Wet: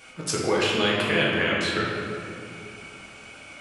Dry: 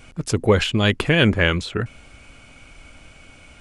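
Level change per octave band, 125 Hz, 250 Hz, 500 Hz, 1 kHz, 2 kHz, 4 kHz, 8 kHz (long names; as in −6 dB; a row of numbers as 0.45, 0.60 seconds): −12.0, −6.0, −3.5, 0.0, −2.0, −2.0, +1.5 decibels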